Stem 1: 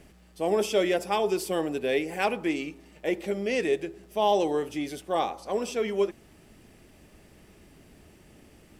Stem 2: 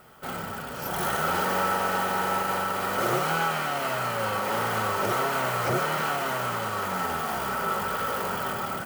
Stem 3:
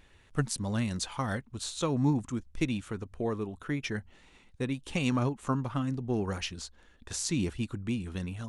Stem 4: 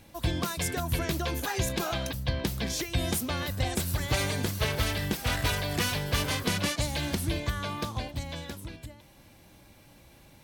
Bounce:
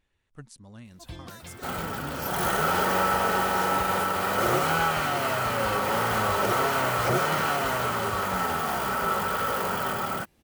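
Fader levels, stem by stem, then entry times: −14.0, +1.5, −15.5, −12.5 decibels; 2.05, 1.40, 0.00, 0.85 seconds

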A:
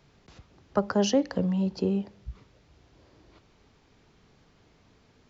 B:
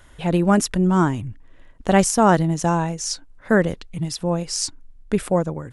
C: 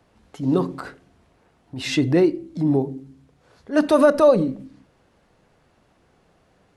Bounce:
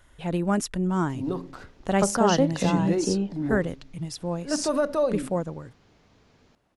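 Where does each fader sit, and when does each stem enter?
+1.0, −7.5, −9.5 decibels; 1.25, 0.00, 0.75 seconds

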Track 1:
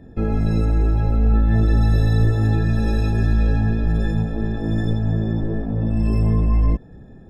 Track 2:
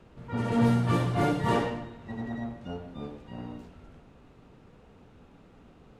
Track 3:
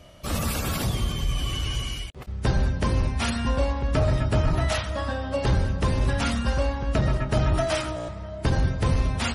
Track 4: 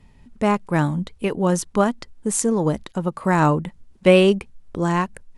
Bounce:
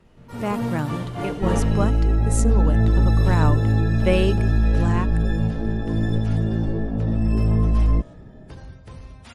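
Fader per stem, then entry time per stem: −1.0, −3.0, −17.5, −7.0 decibels; 1.25, 0.00, 0.05, 0.00 seconds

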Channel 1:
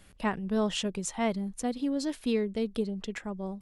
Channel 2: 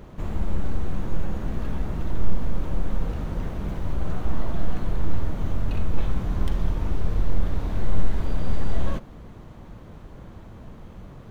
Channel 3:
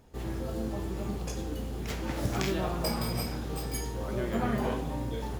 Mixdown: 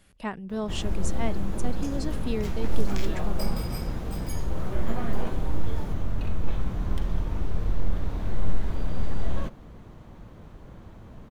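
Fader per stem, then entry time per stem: −3.0, −3.0, −4.5 decibels; 0.00, 0.50, 0.55 seconds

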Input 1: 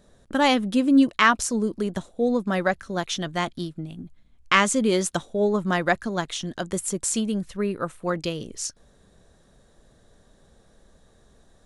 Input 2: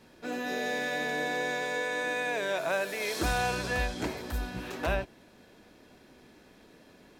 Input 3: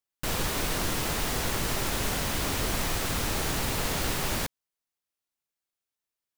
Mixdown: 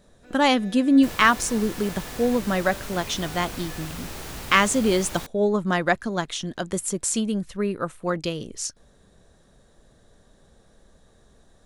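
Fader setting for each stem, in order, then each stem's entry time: +0.5, −15.0, −7.5 decibels; 0.00, 0.00, 0.80 seconds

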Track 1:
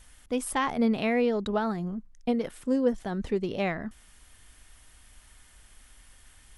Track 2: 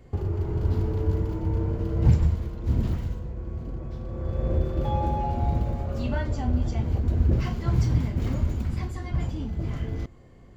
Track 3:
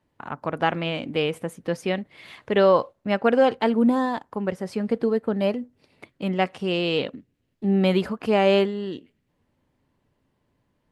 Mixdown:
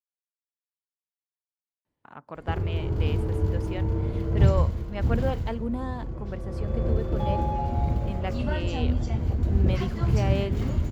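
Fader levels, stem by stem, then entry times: muted, −0.5 dB, −11.5 dB; muted, 2.35 s, 1.85 s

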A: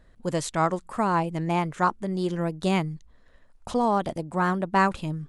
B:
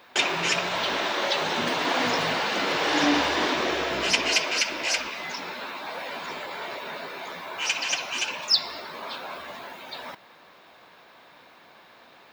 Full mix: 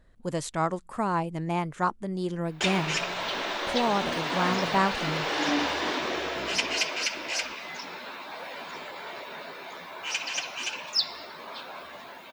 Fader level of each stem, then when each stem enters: −3.5, −4.5 decibels; 0.00, 2.45 seconds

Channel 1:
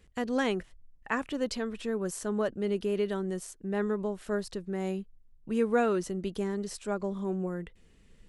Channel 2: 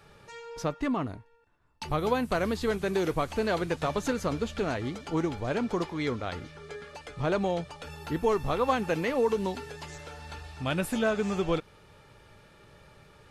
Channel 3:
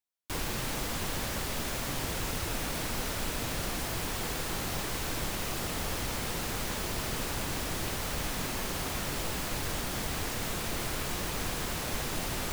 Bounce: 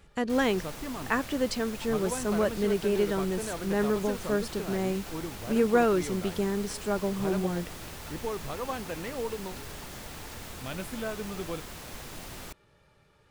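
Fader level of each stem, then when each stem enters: +3.0, −8.5, −8.5 decibels; 0.00, 0.00, 0.00 seconds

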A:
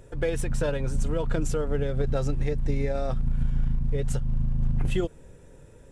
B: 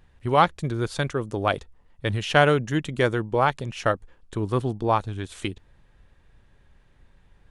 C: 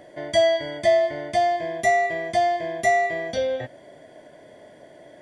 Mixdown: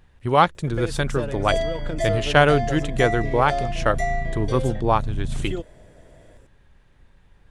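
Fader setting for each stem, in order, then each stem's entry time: −2.5, +2.0, −7.0 decibels; 0.55, 0.00, 1.15 seconds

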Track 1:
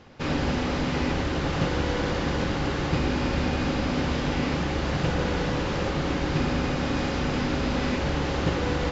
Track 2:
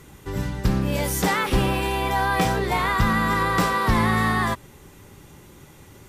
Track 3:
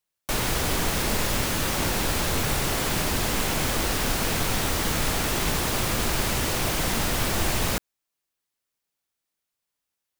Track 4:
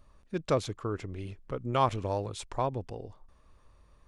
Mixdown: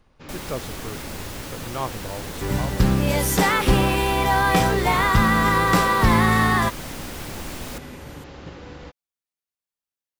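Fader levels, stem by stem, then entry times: −13.5, +3.0, −10.0, −3.0 decibels; 0.00, 2.15, 0.00, 0.00 seconds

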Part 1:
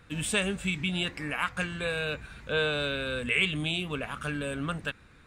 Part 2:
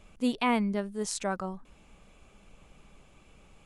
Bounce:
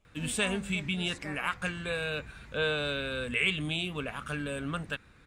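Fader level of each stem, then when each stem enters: −2.0, −15.5 decibels; 0.05, 0.00 seconds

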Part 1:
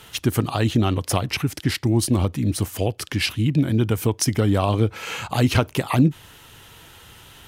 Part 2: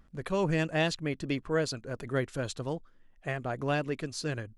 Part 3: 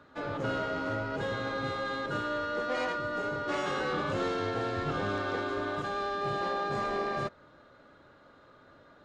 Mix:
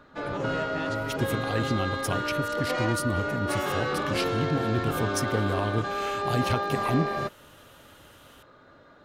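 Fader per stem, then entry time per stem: −9.0, −10.0, +3.0 decibels; 0.95, 0.00, 0.00 seconds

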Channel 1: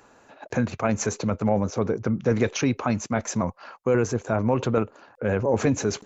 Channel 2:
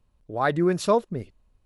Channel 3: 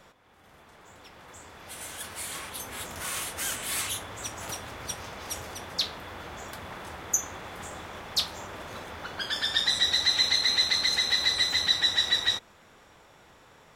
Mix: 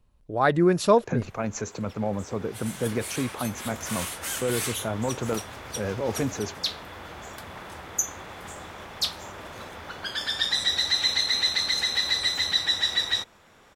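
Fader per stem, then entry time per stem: −6.0, +2.0, 0.0 decibels; 0.55, 0.00, 0.85 seconds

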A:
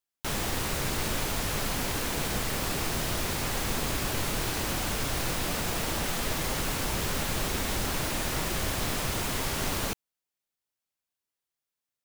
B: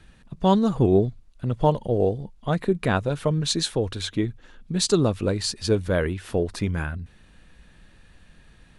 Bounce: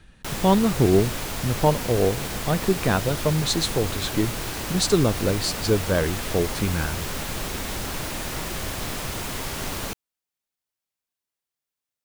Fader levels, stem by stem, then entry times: 0.0, +0.5 decibels; 0.00, 0.00 seconds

